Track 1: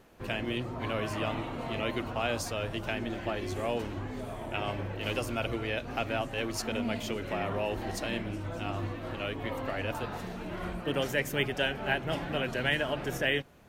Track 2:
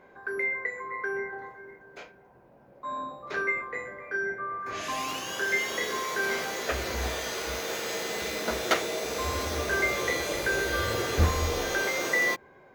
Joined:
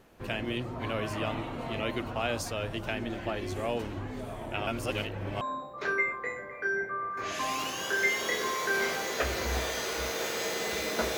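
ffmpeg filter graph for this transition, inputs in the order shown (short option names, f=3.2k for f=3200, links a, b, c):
-filter_complex "[0:a]apad=whole_dur=11.17,atrim=end=11.17,asplit=2[a][b];[a]atrim=end=4.672[c];[b]atrim=start=4.668:end=5.412,asetpts=PTS-STARTPTS,areverse[d];[1:a]atrim=start=2.898:end=8.66[e];[c][d]acrossfade=d=0.004:c1=hsin:c2=hsin[f];[f][e]acrossfade=d=0.004:c1=hsin:c2=hsin"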